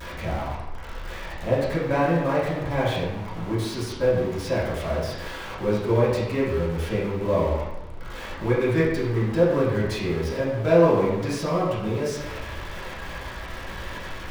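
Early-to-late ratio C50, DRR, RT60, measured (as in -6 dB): 1.0 dB, -10.0 dB, 0.95 s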